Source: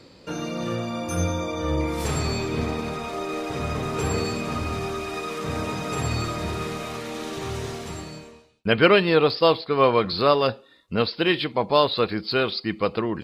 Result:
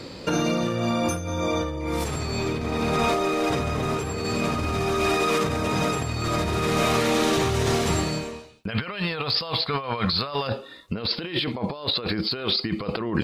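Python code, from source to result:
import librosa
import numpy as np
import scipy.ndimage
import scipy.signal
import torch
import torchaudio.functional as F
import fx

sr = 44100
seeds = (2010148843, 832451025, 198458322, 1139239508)

y = fx.peak_eq(x, sr, hz=350.0, db=-12.5, octaves=1.2, at=(8.68, 10.49))
y = fx.over_compress(y, sr, threshold_db=-32.0, ratio=-1.0)
y = y * librosa.db_to_amplitude(6.0)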